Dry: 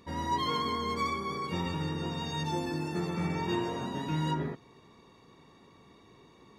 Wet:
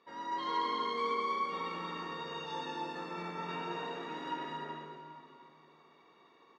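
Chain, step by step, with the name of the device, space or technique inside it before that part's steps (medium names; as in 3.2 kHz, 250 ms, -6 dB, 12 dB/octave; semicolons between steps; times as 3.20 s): station announcement (band-pass 440–4100 Hz; peaking EQ 1.3 kHz +4.5 dB 0.55 oct; loudspeakers at several distances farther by 75 m -5 dB, 100 m -5 dB; reverberation RT60 2.6 s, pre-delay 12 ms, DRR 0 dB); trim -8 dB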